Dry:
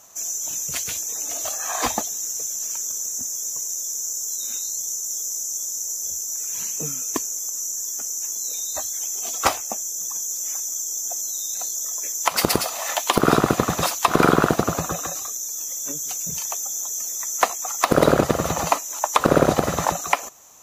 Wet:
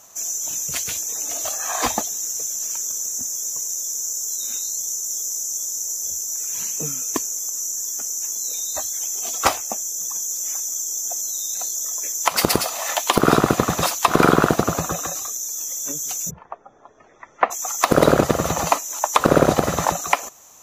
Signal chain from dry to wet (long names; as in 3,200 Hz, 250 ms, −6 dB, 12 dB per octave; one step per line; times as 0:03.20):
0:16.29–0:17.50: low-pass filter 1,400 Hz → 2,400 Hz 24 dB per octave
level +1.5 dB